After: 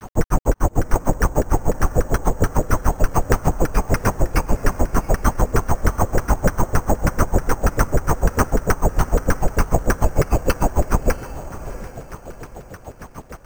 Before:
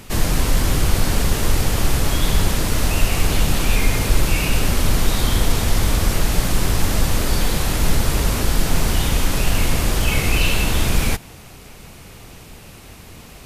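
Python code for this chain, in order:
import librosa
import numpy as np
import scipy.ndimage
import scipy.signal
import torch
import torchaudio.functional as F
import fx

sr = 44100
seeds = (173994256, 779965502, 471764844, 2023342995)

p1 = fx.over_compress(x, sr, threshold_db=-19.0, ratio=-1.0)
p2 = x + (p1 * 10.0 ** (-0.5 / 20.0))
p3 = fx.filter_lfo_lowpass(p2, sr, shape='saw_down', hz=9.9, low_hz=440.0, high_hz=1700.0, q=3.5)
p4 = fx.granulator(p3, sr, seeds[0], grain_ms=96.0, per_s=6.7, spray_ms=21.0, spread_st=0)
p5 = fx.quant_dither(p4, sr, seeds[1], bits=8, dither='none')
p6 = p5 + fx.echo_diffused(p5, sr, ms=710, feedback_pct=42, wet_db=-14.5, dry=0)
y = np.repeat(scipy.signal.resample_poly(p6, 1, 6), 6)[:len(p6)]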